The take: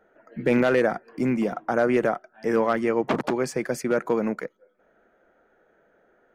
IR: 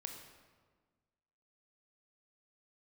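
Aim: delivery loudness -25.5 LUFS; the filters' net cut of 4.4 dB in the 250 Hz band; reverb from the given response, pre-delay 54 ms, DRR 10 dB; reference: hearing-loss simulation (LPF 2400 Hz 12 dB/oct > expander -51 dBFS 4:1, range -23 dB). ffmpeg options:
-filter_complex "[0:a]equalizer=f=250:t=o:g=-5.5,asplit=2[a][b];[1:a]atrim=start_sample=2205,adelay=54[c];[b][c]afir=irnorm=-1:irlink=0,volume=-7dB[d];[a][d]amix=inputs=2:normalize=0,lowpass=2.4k,agate=range=-23dB:threshold=-51dB:ratio=4,volume=0.5dB"

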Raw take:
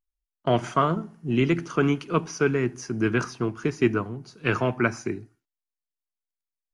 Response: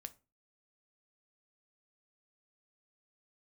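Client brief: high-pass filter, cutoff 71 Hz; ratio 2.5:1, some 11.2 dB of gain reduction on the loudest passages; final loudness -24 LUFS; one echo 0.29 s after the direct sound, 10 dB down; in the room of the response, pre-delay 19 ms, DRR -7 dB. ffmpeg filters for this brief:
-filter_complex "[0:a]highpass=71,acompressor=threshold=-34dB:ratio=2.5,aecho=1:1:290:0.316,asplit=2[a][b];[1:a]atrim=start_sample=2205,adelay=19[c];[b][c]afir=irnorm=-1:irlink=0,volume=12.5dB[d];[a][d]amix=inputs=2:normalize=0,volume=3dB"

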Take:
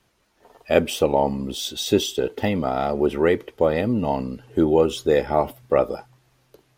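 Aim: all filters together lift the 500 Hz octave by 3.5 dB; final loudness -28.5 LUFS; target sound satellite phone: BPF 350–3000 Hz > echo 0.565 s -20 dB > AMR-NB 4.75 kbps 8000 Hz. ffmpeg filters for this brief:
-af "highpass=350,lowpass=3k,equalizer=f=500:t=o:g=5.5,aecho=1:1:565:0.1,volume=-7.5dB" -ar 8000 -c:a libopencore_amrnb -b:a 4750

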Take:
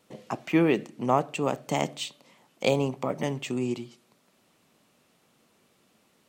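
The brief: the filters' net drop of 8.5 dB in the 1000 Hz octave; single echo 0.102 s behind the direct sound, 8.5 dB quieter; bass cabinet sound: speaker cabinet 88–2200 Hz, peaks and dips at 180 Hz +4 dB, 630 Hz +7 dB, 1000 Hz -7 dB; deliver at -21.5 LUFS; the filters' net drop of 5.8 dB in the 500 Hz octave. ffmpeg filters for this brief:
-af "highpass=f=88:w=0.5412,highpass=f=88:w=1.3066,equalizer=f=180:t=q:w=4:g=4,equalizer=f=630:t=q:w=4:g=7,equalizer=f=1k:t=q:w=4:g=-7,lowpass=f=2.2k:w=0.5412,lowpass=f=2.2k:w=1.3066,equalizer=f=500:t=o:g=-8.5,equalizer=f=1k:t=o:g=-8,aecho=1:1:102:0.376,volume=10dB"

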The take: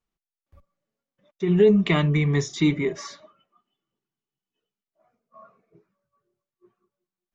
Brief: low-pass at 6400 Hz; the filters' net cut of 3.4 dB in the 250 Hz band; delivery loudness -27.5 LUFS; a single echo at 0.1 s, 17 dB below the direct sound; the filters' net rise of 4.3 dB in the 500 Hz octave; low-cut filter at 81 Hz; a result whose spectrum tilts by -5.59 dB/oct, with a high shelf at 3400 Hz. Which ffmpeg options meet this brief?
-af "highpass=81,lowpass=6.4k,equalizer=f=250:t=o:g=-8,equalizer=f=500:t=o:g=8.5,highshelf=f=3.4k:g=3.5,aecho=1:1:100:0.141,volume=-7.5dB"

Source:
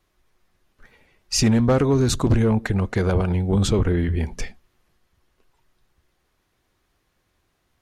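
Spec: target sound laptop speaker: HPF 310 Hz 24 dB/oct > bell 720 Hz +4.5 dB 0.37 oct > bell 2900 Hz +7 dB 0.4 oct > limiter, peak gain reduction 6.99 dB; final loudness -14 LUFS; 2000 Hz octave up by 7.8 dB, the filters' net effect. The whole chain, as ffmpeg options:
-af "highpass=f=310:w=0.5412,highpass=f=310:w=1.3066,equalizer=f=720:t=o:w=0.37:g=4.5,equalizer=f=2k:t=o:g=8.5,equalizer=f=2.9k:t=o:w=0.4:g=7,volume=11.5dB,alimiter=limit=-1.5dB:level=0:latency=1"

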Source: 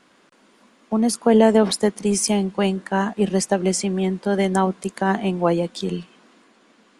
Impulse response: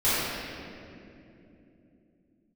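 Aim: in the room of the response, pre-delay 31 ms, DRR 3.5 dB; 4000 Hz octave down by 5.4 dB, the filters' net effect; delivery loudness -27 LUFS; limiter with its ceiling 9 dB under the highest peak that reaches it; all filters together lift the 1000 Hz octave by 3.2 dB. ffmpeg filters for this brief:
-filter_complex "[0:a]equalizer=f=1k:t=o:g=4.5,equalizer=f=4k:t=o:g=-8,alimiter=limit=-10.5dB:level=0:latency=1,asplit=2[a][b];[1:a]atrim=start_sample=2205,adelay=31[c];[b][c]afir=irnorm=-1:irlink=0,volume=-19.5dB[d];[a][d]amix=inputs=2:normalize=0,volume=-7dB"

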